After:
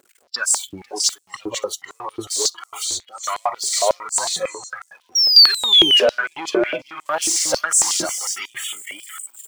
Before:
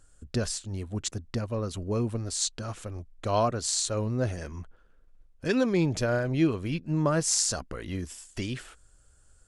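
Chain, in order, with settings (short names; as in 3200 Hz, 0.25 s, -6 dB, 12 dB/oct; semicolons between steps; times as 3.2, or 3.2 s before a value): zero-crossing step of -33.5 dBFS; phaser 1.4 Hz, delay 4.1 ms, feedback 39%; 6.89–7.99 sample leveller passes 1; tapped delay 0.5/0.822 s -4/-15 dB; 5.15–6 painted sound fall 2800–5700 Hz -20 dBFS; on a send at -19 dB: reverb RT60 0.65 s, pre-delay 47 ms; on the sum: spectral noise reduction 21 dB; in parallel at -4 dB: hard clip -23.5 dBFS, distortion -7 dB; on the sum: maximiser +13 dB; stepped high-pass 11 Hz 360–7800 Hz; gain -11.5 dB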